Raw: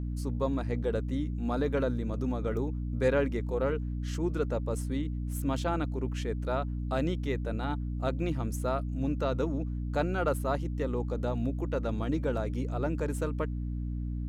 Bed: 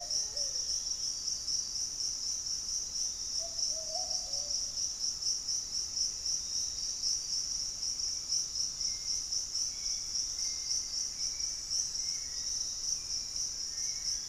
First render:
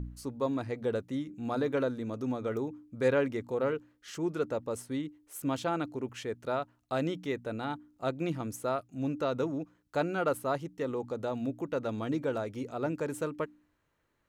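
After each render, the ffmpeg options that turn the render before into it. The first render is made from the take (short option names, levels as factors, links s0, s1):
-af "bandreject=f=60:t=h:w=4,bandreject=f=120:t=h:w=4,bandreject=f=180:t=h:w=4,bandreject=f=240:t=h:w=4,bandreject=f=300:t=h:w=4"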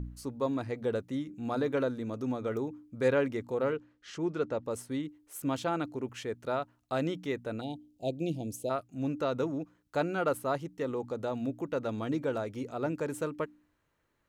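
-filter_complex "[0:a]asettb=1/sr,asplit=3[s0][s1][s2];[s0]atrim=end=3.744[s3];[s1]atrim=start=3.74:end=4.65,asetpts=PTS-STARTPTS,afade=t=in:d=0.004:c=qsin,afade=t=out:st=0.906:d=0.004:c=qsin,lowpass=5800[s4];[s2]atrim=start=4.646[s5];[s3][s4]acrossfade=d=0.004:c1=hsin:c2=qsin[s6];[s6][s5]acrossfade=d=0.004:c1=qsin:c2=hsin,asplit=3[s7][s8][s9];[s7]afade=t=out:st=7.6:d=0.02[s10];[s8]asuperstop=centerf=1400:order=8:qfactor=0.74,afade=t=in:st=7.6:d=0.02,afade=t=out:st=8.69:d=0.02[s11];[s9]afade=t=in:st=8.69:d=0.02[s12];[s10][s11][s12]amix=inputs=3:normalize=0"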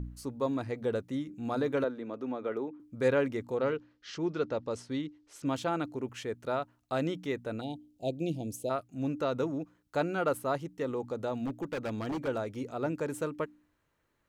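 -filter_complex "[0:a]asettb=1/sr,asplit=3[s0][s1][s2];[s0]atrim=end=1.844[s3];[s1]atrim=start=1.84:end=2.8,asetpts=PTS-STARTPTS,afade=t=in:d=0.004:c=qsin,afade=t=out:st=0.956:d=0.004:c=qsin,acrossover=split=220 3800:gain=0.126 1 0.126[s4][s5][s6];[s4][s5][s6]amix=inputs=3:normalize=0[s7];[s2]atrim=start=2.796[s8];[s3][s7]acrossfade=d=0.004:c1=hsin:c2=qsin[s9];[s9][s8]acrossfade=d=0.004:c1=qsin:c2=hsin,asettb=1/sr,asplit=3[s10][s11][s12];[s10]atrim=end=3.564[s13];[s11]atrim=start=3.56:end=5.46,asetpts=PTS-STARTPTS,afade=t=in:d=0.004:c=qsin,afade=t=out:st=1.896:d=0.004:c=qsin,lowpass=f=5100:t=q:w=1.7[s14];[s12]atrim=start=5.456[s15];[s13][s14]acrossfade=d=0.004:c1=hsin:c2=qsin[s16];[s16][s15]acrossfade=d=0.004:c1=qsin:c2=hsin,asettb=1/sr,asplit=3[s17][s18][s19];[s17]atrim=end=11.424[s20];[s18]atrim=start=11.42:end=12.28,asetpts=PTS-STARTPTS,afade=t=in:d=0.004:c=qsin,afade=t=out:st=0.856:d=0.004:c=qsin,aeval=exprs='0.0376*(abs(mod(val(0)/0.0376+3,4)-2)-1)':c=same[s21];[s19]atrim=start=12.276[s22];[s20][s21]acrossfade=d=0.004:c1=hsin:c2=qsin[s23];[s23][s22]acrossfade=d=0.004:c1=qsin:c2=hsin"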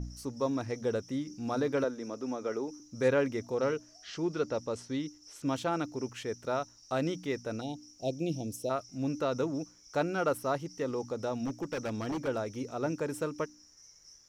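-filter_complex "[1:a]volume=0.0841[s0];[0:a][s0]amix=inputs=2:normalize=0"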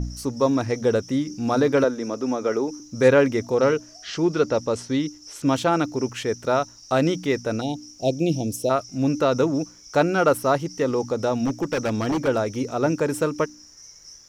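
-af "volume=3.55"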